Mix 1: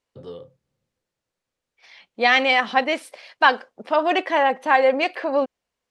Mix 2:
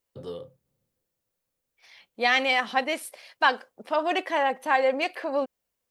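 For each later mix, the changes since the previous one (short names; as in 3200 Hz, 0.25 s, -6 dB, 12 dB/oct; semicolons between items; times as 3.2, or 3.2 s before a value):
second voice -6.0 dB; master: remove air absorption 78 m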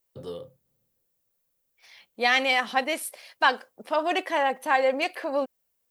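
master: add high shelf 9900 Hz +10.5 dB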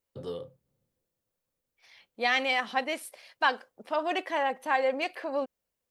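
second voice -4.0 dB; master: add high shelf 9900 Hz -10.5 dB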